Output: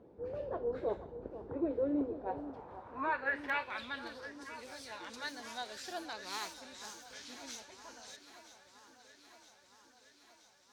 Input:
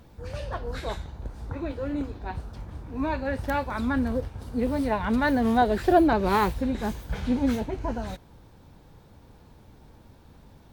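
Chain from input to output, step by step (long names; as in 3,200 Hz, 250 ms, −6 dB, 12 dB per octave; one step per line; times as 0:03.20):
band-pass filter sweep 420 Hz → 5,900 Hz, 0:02.04–0:04.44
on a send: delay that swaps between a low-pass and a high-pass 484 ms, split 1,400 Hz, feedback 81%, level −12 dB
on the sum: level +3.5 dB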